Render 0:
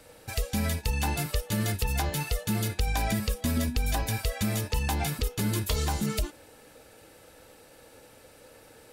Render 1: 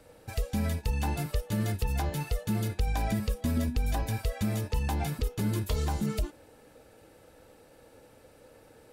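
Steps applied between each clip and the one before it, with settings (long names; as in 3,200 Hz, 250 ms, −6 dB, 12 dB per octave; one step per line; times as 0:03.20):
tilt shelving filter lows +4 dB, about 1,300 Hz
level −4.5 dB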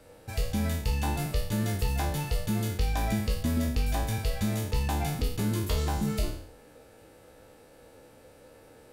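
peak hold with a decay on every bin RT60 0.61 s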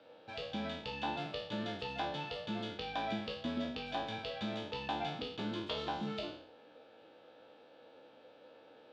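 loudspeaker in its box 310–3,800 Hz, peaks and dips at 400 Hz −5 dB, 1,100 Hz −3 dB, 2,000 Hz −8 dB, 3,400 Hz +6 dB
level −2 dB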